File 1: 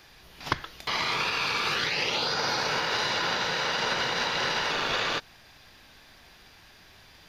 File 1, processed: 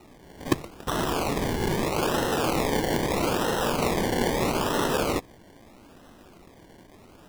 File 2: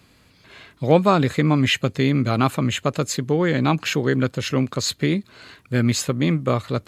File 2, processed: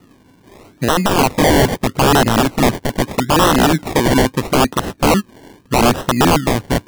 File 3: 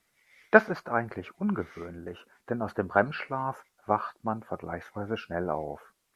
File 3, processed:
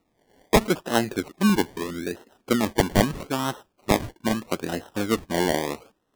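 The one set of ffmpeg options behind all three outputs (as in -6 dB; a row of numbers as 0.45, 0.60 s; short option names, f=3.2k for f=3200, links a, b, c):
-af "equalizer=f=290:t=o:w=1.7:g=13,alimiter=limit=-3.5dB:level=0:latency=1:release=88,acrusher=samples=27:mix=1:aa=0.000001:lfo=1:lforange=16.2:lforate=0.78,aeval=exprs='(mod(2*val(0)+1,2)-1)/2':c=same"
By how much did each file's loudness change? +0.5, +6.0, +4.5 LU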